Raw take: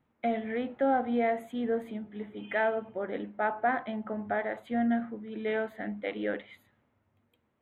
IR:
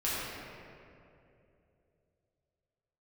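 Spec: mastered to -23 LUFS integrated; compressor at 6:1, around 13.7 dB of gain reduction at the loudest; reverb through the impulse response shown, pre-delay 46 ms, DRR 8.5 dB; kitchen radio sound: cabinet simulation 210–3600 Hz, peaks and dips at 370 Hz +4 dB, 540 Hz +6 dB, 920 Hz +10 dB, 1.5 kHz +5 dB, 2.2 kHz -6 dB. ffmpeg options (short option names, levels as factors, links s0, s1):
-filter_complex "[0:a]acompressor=threshold=0.0126:ratio=6,asplit=2[s0][s1];[1:a]atrim=start_sample=2205,adelay=46[s2];[s1][s2]afir=irnorm=-1:irlink=0,volume=0.141[s3];[s0][s3]amix=inputs=2:normalize=0,highpass=210,equalizer=f=370:t=q:w=4:g=4,equalizer=f=540:t=q:w=4:g=6,equalizer=f=920:t=q:w=4:g=10,equalizer=f=1500:t=q:w=4:g=5,equalizer=f=2200:t=q:w=4:g=-6,lowpass=f=3600:w=0.5412,lowpass=f=3600:w=1.3066,volume=6.31"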